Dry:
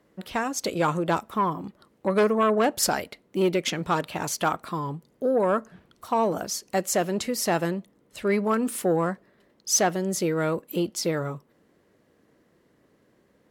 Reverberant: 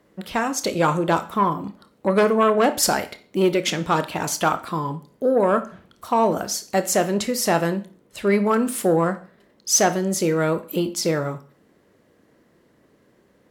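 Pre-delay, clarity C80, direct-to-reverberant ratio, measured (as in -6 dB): 23 ms, 20.0 dB, 10.0 dB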